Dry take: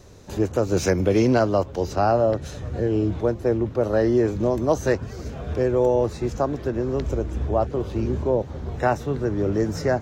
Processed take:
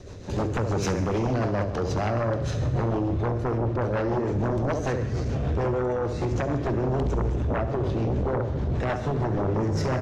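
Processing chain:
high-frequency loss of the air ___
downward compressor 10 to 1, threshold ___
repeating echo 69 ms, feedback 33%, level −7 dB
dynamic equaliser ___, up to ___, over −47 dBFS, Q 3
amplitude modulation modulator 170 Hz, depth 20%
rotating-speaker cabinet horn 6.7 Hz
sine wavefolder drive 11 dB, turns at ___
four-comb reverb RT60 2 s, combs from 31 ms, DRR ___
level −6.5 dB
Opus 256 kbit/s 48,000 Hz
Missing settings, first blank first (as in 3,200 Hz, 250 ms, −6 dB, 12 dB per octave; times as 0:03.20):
68 metres, −24 dBFS, 120 Hz, +7 dB, −15 dBFS, 11.5 dB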